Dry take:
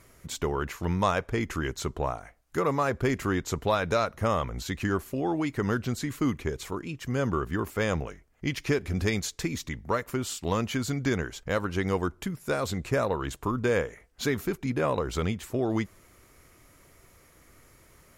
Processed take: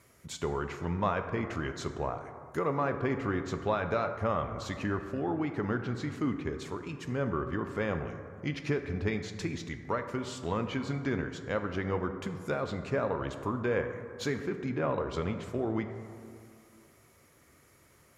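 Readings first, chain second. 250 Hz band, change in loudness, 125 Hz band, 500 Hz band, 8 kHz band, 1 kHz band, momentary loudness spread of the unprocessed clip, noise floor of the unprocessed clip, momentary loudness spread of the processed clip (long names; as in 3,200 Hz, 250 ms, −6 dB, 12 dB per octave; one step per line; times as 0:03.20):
−3.5 dB, −4.0 dB, −4.0 dB, −3.5 dB, −10.5 dB, −3.5 dB, 7 LU, −58 dBFS, 7 LU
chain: treble cut that deepens with the level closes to 2,500 Hz, closed at −24 dBFS
high-pass filter 75 Hz
dense smooth reverb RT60 2.3 s, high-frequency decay 0.35×, DRR 7 dB
level −4.5 dB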